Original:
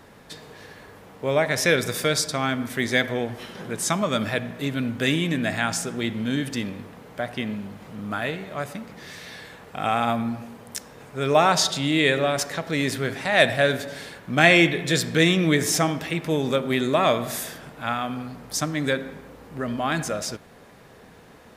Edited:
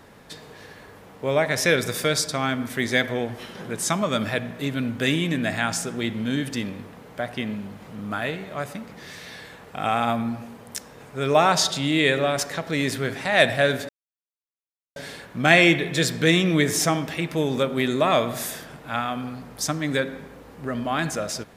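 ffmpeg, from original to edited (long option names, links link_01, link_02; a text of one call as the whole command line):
ffmpeg -i in.wav -filter_complex "[0:a]asplit=2[link_01][link_02];[link_01]atrim=end=13.89,asetpts=PTS-STARTPTS,afade=type=out:start_time=13.886:duration=0.004:curve=hsin,apad=pad_dur=1.07[link_03];[link_02]atrim=start=13.89,asetpts=PTS-STARTPTS,afade=type=in:duration=0.004:curve=hsin[link_04];[link_03][link_04]concat=n=2:v=0:a=1" out.wav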